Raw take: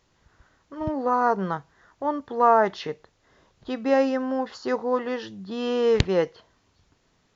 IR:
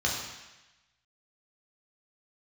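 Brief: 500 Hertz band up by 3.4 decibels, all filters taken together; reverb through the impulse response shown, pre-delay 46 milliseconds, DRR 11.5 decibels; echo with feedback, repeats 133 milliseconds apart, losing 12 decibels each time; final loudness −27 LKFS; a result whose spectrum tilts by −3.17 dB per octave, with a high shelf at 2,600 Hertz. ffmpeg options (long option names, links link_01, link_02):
-filter_complex "[0:a]equalizer=frequency=500:width_type=o:gain=4,highshelf=frequency=2600:gain=-6,aecho=1:1:133|266|399:0.251|0.0628|0.0157,asplit=2[link_01][link_02];[1:a]atrim=start_sample=2205,adelay=46[link_03];[link_02][link_03]afir=irnorm=-1:irlink=0,volume=-21.5dB[link_04];[link_01][link_04]amix=inputs=2:normalize=0,volume=-4.5dB"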